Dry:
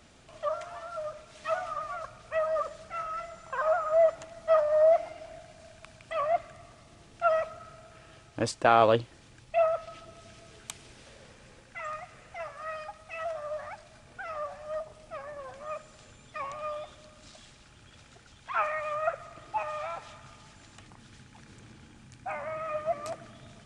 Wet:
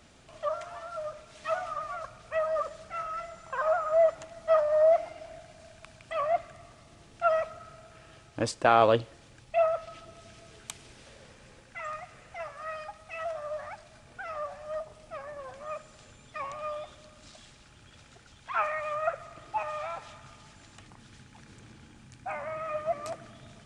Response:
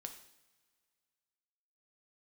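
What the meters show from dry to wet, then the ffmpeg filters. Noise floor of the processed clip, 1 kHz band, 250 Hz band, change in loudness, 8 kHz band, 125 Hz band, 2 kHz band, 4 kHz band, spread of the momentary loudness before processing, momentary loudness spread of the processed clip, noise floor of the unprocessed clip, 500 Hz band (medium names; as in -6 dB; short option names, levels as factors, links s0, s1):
-56 dBFS, 0.0 dB, 0.0 dB, 0.0 dB, 0.0 dB, 0.0 dB, 0.0 dB, 0.0 dB, 21 LU, 21 LU, -56 dBFS, 0.0 dB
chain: -filter_complex "[0:a]asplit=2[s0][s1];[1:a]atrim=start_sample=2205[s2];[s1][s2]afir=irnorm=-1:irlink=0,volume=0.211[s3];[s0][s3]amix=inputs=2:normalize=0,volume=0.891"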